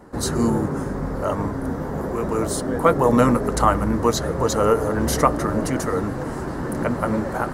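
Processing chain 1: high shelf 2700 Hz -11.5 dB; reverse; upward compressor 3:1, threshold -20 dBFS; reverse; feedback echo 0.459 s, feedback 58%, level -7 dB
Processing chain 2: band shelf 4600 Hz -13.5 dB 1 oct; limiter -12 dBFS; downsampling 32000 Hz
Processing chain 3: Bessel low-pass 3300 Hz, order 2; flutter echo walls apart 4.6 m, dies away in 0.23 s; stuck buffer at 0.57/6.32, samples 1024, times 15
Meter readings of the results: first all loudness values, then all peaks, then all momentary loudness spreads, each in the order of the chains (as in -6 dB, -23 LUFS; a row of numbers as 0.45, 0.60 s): -21.0, -24.0, -21.0 LUFS; -2.5, -12.0, -2.5 dBFS; 7, 6, 9 LU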